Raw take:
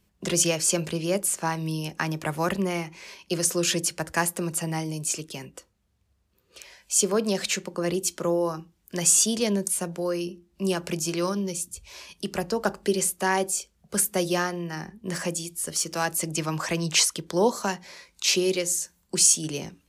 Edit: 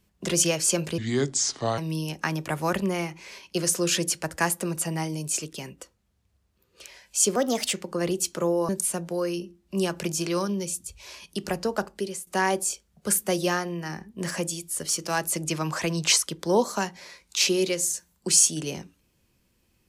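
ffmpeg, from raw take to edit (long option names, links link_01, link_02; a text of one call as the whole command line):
ffmpeg -i in.wav -filter_complex "[0:a]asplit=7[link_01][link_02][link_03][link_04][link_05][link_06][link_07];[link_01]atrim=end=0.984[link_08];[link_02]atrim=start=0.98:end=1.54,asetpts=PTS-STARTPTS,asetrate=30870,aresample=44100[link_09];[link_03]atrim=start=1.536:end=7.124[link_10];[link_04]atrim=start=7.12:end=7.57,asetpts=PTS-STARTPTS,asetrate=52479,aresample=44100,atrim=end_sample=16676,asetpts=PTS-STARTPTS[link_11];[link_05]atrim=start=7.566:end=8.522[link_12];[link_06]atrim=start=9.558:end=13.14,asetpts=PTS-STARTPTS,afade=type=out:start_time=2.942:duration=0.64:silence=0.16788[link_13];[link_07]atrim=start=13.14,asetpts=PTS-STARTPTS,afade=type=in:duration=0.004:curve=hsin:silence=0.16788[link_14];[link_08][link_09]acrossfade=duration=0.004:curve1=hsin:curve2=hsin[link_15];[link_15][link_10]acrossfade=duration=0.004:curve1=hsin:curve2=hsin[link_16];[link_16][link_11]acrossfade=duration=0.004:curve1=hsin:curve2=hsin[link_17];[link_17][link_12]acrossfade=duration=0.004:curve1=hsin:curve2=hsin[link_18];[link_13][link_14]concat=n=2:v=0:a=1[link_19];[link_18][link_19]acrossfade=duration=0.004:curve1=hsin:curve2=hsin" out.wav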